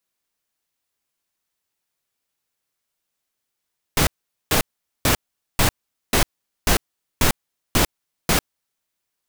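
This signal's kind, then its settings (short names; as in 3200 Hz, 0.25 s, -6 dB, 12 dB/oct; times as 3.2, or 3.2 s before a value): noise bursts pink, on 0.10 s, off 0.44 s, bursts 9, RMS -16.5 dBFS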